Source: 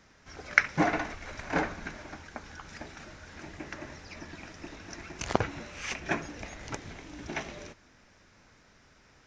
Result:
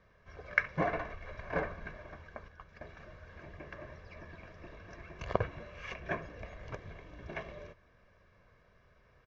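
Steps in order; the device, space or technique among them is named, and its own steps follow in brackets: 2.48–2.88 s: gate -44 dBFS, range -7 dB; phone in a pocket (low-pass 3.6 kHz 12 dB/octave; treble shelf 2.4 kHz -9.5 dB); comb 1.8 ms, depth 64%; trim -4.5 dB

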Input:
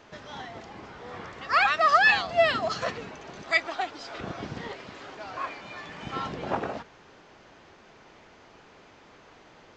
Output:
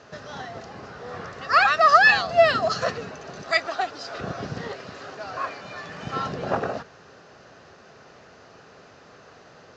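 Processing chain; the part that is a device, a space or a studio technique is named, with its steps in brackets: car door speaker (cabinet simulation 84–7000 Hz, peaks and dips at 220 Hz -4 dB, 320 Hz -8 dB, 920 Hz -8 dB, 2.2 kHz -9 dB, 3.3 kHz -8 dB); trim +7 dB

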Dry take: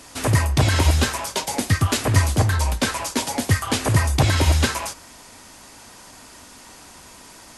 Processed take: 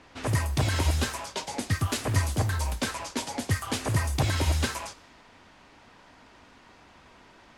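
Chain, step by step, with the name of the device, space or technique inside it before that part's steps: cassette deck with a dynamic noise filter (white noise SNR 23 dB; level-controlled noise filter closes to 2.3 kHz, open at -17 dBFS); trim -8 dB

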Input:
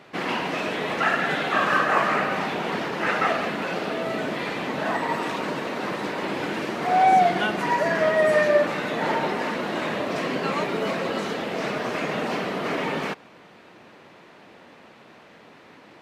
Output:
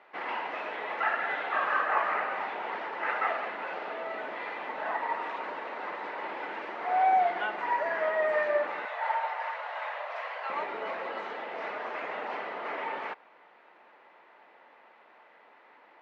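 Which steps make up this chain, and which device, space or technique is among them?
tin-can telephone (band-pass 610–2100 Hz; small resonant body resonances 880/2000 Hz, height 7 dB); 8.85–10.50 s: steep high-pass 560 Hz 36 dB/octave; trim -5.5 dB

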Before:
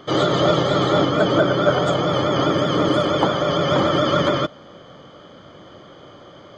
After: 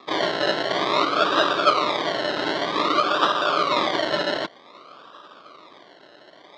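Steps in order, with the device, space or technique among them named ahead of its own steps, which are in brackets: circuit-bent sampling toy (decimation with a swept rate 29×, swing 60% 0.53 Hz; cabinet simulation 510–4300 Hz, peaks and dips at 520 Hz -7 dB, 830 Hz -7 dB, 1.2 kHz +8 dB, 1.8 kHz -5 dB, 2.6 kHz -6 dB, 3.8 kHz +6 dB); trim +1.5 dB

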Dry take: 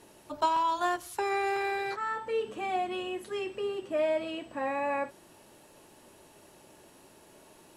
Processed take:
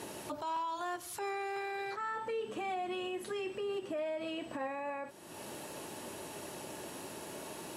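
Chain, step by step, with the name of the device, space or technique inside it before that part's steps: podcast mastering chain (high-pass 86 Hz; de-esser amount 90%; compression 2.5:1, threshold -51 dBFS, peak gain reduction 18.5 dB; peak limiter -42 dBFS, peak gain reduction 10.5 dB; trim +12 dB; MP3 96 kbps 44.1 kHz)

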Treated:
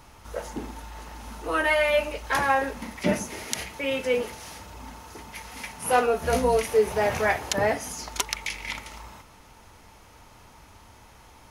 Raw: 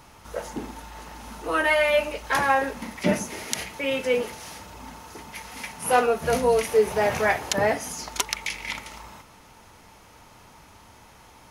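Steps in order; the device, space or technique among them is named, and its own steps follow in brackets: low shelf boost with a cut just above (bass shelf 110 Hz +6.5 dB; peaking EQ 160 Hz -3 dB 0.83 oct); 6.12–6.57 s: doubling 16 ms -7 dB; trim -1.5 dB

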